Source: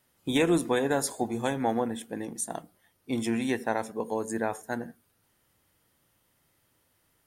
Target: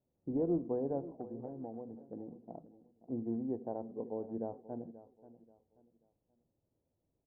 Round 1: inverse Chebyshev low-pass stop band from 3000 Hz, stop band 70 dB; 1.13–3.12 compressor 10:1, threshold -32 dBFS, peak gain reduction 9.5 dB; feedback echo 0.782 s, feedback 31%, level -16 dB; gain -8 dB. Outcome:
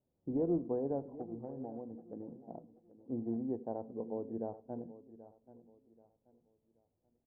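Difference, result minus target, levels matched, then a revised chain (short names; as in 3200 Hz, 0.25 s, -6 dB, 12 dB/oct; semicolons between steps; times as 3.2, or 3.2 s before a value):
echo 0.249 s late
inverse Chebyshev low-pass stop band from 3000 Hz, stop band 70 dB; 1.13–3.12 compressor 10:1, threshold -32 dBFS, peak gain reduction 9.5 dB; feedback echo 0.533 s, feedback 31%, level -16 dB; gain -8 dB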